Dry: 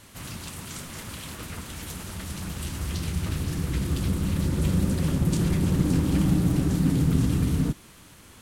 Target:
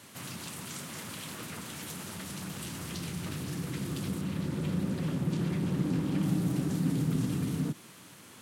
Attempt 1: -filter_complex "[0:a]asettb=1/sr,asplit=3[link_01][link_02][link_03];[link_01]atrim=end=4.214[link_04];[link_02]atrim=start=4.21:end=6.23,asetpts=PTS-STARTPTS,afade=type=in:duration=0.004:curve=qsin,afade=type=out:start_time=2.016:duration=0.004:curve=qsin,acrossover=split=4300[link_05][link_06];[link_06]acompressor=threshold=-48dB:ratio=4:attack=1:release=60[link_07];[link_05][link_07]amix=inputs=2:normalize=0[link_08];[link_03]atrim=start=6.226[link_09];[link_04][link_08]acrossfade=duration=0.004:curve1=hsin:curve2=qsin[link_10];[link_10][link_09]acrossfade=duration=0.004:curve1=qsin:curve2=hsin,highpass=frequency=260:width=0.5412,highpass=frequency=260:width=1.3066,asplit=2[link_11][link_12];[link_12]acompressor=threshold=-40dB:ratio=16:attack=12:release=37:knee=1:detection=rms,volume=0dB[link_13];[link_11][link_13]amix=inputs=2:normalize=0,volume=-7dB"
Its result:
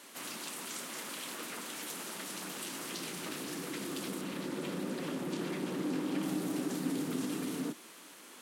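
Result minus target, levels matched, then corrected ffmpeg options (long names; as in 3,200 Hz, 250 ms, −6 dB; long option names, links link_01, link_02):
125 Hz band −10.5 dB
-filter_complex "[0:a]asettb=1/sr,asplit=3[link_01][link_02][link_03];[link_01]atrim=end=4.214[link_04];[link_02]atrim=start=4.21:end=6.23,asetpts=PTS-STARTPTS,afade=type=in:duration=0.004:curve=qsin,afade=type=out:start_time=2.016:duration=0.004:curve=qsin,acrossover=split=4300[link_05][link_06];[link_06]acompressor=threshold=-48dB:ratio=4:attack=1:release=60[link_07];[link_05][link_07]amix=inputs=2:normalize=0[link_08];[link_03]atrim=start=6.226[link_09];[link_04][link_08]acrossfade=duration=0.004:curve1=hsin:curve2=qsin[link_10];[link_10][link_09]acrossfade=duration=0.004:curve1=qsin:curve2=hsin,highpass=frequency=120:width=0.5412,highpass=frequency=120:width=1.3066,asplit=2[link_11][link_12];[link_12]acompressor=threshold=-40dB:ratio=16:attack=12:release=37:knee=1:detection=rms,volume=0dB[link_13];[link_11][link_13]amix=inputs=2:normalize=0,volume=-7dB"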